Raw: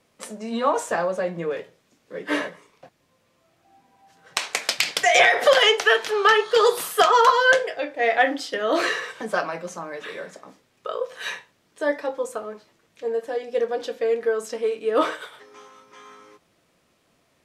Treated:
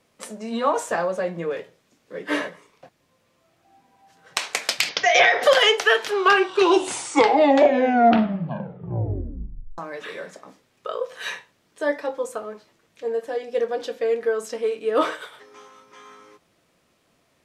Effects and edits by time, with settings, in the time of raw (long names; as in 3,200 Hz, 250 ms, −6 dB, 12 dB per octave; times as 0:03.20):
0:04.89–0:05.43: Butterworth low-pass 6,500 Hz 96 dB per octave
0:06.00: tape stop 3.78 s